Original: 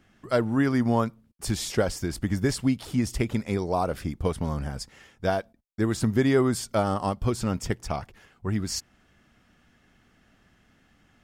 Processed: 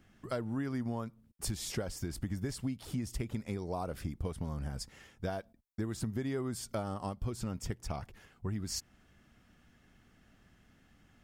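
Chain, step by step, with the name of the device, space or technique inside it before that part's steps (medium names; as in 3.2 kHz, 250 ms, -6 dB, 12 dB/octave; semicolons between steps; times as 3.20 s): ASMR close-microphone chain (bass shelf 240 Hz +5 dB; compression 4:1, threshold -29 dBFS, peak gain reduction 12.5 dB; treble shelf 8.8 kHz +5.5 dB); trim -5 dB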